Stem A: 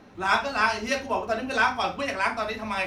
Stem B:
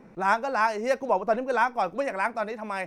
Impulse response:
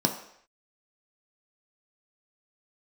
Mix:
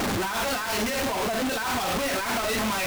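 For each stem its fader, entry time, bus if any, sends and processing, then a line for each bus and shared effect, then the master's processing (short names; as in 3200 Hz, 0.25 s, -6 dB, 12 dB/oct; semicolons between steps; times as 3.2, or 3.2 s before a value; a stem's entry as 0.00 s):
+0.5 dB, 0.00 s, no send, infinite clipping
-3.5 dB, 0.00 s, no send, bell 580 Hz -7 dB 1.8 oct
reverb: off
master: limiter -22 dBFS, peak gain reduction 7 dB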